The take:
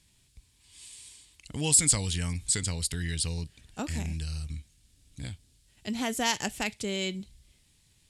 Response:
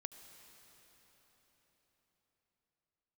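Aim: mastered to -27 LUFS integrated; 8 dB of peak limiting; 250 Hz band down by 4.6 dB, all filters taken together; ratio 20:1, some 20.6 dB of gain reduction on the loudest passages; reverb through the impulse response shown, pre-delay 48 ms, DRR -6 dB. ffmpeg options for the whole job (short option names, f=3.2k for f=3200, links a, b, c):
-filter_complex "[0:a]equalizer=f=250:t=o:g=-6.5,acompressor=threshold=-37dB:ratio=20,alimiter=level_in=8.5dB:limit=-24dB:level=0:latency=1,volume=-8.5dB,asplit=2[a][b];[1:a]atrim=start_sample=2205,adelay=48[c];[b][c]afir=irnorm=-1:irlink=0,volume=10dB[d];[a][d]amix=inputs=2:normalize=0,volume=10.5dB"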